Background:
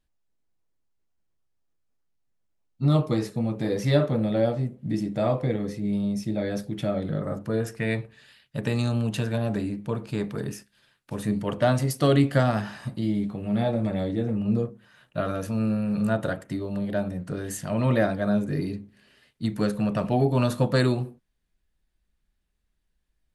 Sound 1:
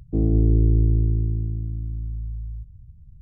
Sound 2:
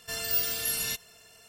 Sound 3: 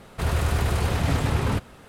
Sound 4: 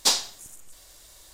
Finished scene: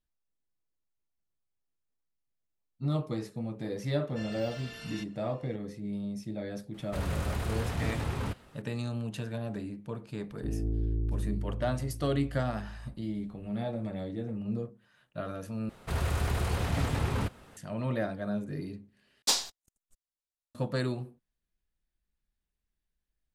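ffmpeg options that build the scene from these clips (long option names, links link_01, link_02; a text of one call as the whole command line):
ffmpeg -i bed.wav -i cue0.wav -i cue1.wav -i cue2.wav -i cue3.wav -filter_complex "[3:a]asplit=2[link_01][link_02];[0:a]volume=-9.5dB[link_03];[2:a]lowpass=3100[link_04];[1:a]equalizer=frequency=140:width_type=o:width=0.5:gain=-8[link_05];[4:a]agate=range=-46dB:threshold=-41dB:ratio=16:release=41:detection=rms[link_06];[link_03]asplit=3[link_07][link_08][link_09];[link_07]atrim=end=15.694[link_10];[link_02]atrim=end=1.88,asetpts=PTS-STARTPTS,volume=-6.5dB[link_11];[link_08]atrim=start=17.566:end=19.224[link_12];[link_06]atrim=end=1.33,asetpts=PTS-STARTPTS,volume=-5.5dB[link_13];[link_09]atrim=start=20.546[link_14];[link_04]atrim=end=1.48,asetpts=PTS-STARTPTS,volume=-6.5dB,afade=type=in:duration=0.004:curve=hsin,afade=type=out:start_time=1.476:duration=0.004:curve=hsin,adelay=4080[link_15];[link_01]atrim=end=1.88,asetpts=PTS-STARTPTS,volume=-9.5dB,afade=type=in:duration=0.004:curve=hsin,afade=type=out:start_time=1.876:duration=0.004:curve=hsin,adelay=297234S[link_16];[link_05]atrim=end=3.21,asetpts=PTS-STARTPTS,volume=-12.5dB,afade=type=in:duration=0.004:curve=hsin,afade=type=out:start_time=3.206:duration=0.004:curve=hsin,adelay=10300[link_17];[link_10][link_11]acrossfade=duration=0.004:curve1=hsin:curve2=hsin[link_18];[link_18][link_12]acrossfade=duration=0.004:curve1=hsin:curve2=hsin[link_19];[link_19][link_13]acrossfade=duration=0.004:curve1=hsin:curve2=hsin[link_20];[link_20][link_14]acrossfade=duration=0.004:curve1=hsin:curve2=hsin[link_21];[link_21][link_15][link_16][link_17]amix=inputs=4:normalize=0" out.wav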